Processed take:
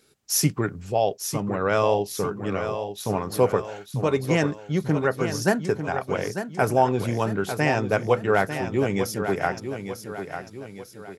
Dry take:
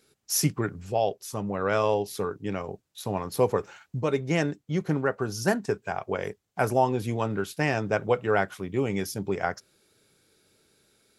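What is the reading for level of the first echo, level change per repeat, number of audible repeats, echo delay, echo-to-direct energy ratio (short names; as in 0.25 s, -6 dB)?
-9.0 dB, -6.5 dB, 3, 0.897 s, -8.0 dB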